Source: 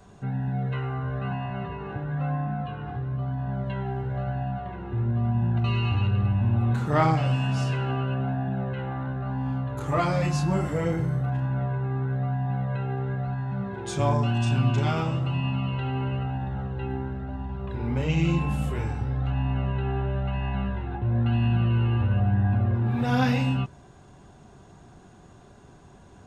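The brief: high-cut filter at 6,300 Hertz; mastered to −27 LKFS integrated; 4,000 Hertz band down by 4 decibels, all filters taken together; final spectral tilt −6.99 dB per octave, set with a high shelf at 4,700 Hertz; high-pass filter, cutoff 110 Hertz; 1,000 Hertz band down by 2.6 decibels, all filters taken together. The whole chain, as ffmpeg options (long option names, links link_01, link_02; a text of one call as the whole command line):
ffmpeg -i in.wav -af "highpass=110,lowpass=6300,equalizer=frequency=1000:width_type=o:gain=-3.5,equalizer=frequency=4000:width_type=o:gain=-8,highshelf=frequency=4700:gain=4.5,volume=2dB" out.wav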